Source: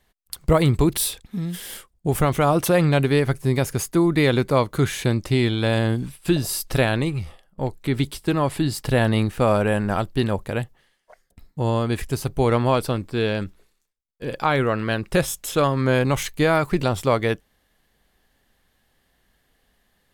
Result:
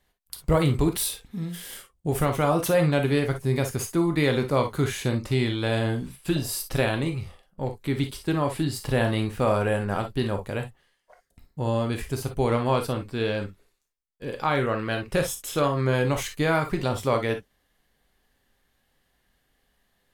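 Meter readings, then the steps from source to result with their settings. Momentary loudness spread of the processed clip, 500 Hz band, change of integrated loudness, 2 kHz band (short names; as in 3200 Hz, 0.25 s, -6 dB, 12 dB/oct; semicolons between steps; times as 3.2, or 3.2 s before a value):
11 LU, -3.5 dB, -4.0 dB, -3.5 dB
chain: non-linear reverb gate 80 ms flat, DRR 4.5 dB; gain -5 dB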